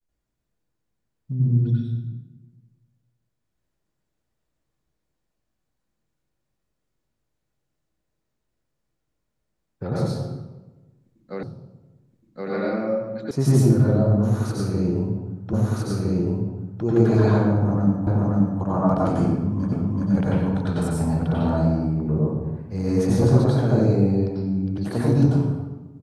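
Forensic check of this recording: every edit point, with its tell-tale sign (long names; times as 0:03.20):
0:11.43: the same again, the last 1.07 s
0:13.31: cut off before it has died away
0:15.53: the same again, the last 1.31 s
0:18.07: the same again, the last 0.53 s
0:19.72: the same again, the last 0.38 s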